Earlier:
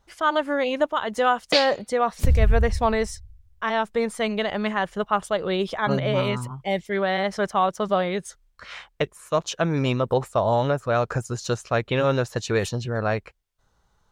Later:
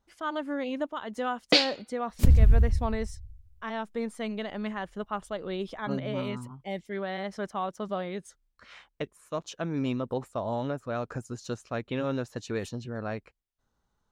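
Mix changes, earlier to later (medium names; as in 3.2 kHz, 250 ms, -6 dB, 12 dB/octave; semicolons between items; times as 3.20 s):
speech -11.5 dB; master: add peaking EQ 260 Hz +9 dB 0.71 oct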